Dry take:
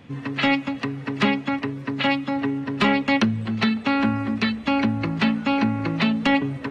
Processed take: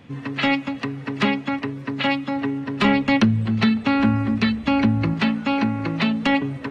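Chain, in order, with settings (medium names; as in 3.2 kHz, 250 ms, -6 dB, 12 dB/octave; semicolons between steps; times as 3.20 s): 2.84–5.14 s: bass shelf 170 Hz +9.5 dB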